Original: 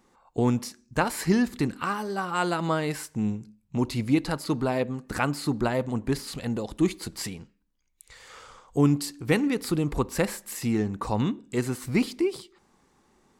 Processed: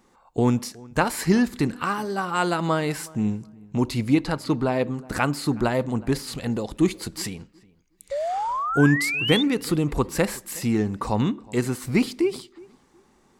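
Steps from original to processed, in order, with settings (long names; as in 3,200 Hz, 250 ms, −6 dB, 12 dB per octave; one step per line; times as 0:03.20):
0:04.15–0:04.79: high-shelf EQ 9,200 Hz → 6,200 Hz −9.5 dB
0:08.11–0:09.43: sound drawn into the spectrogram rise 540–3,700 Hz −29 dBFS
feedback echo with a low-pass in the loop 367 ms, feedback 21%, low-pass 2,200 Hz, level −23 dB
level +3 dB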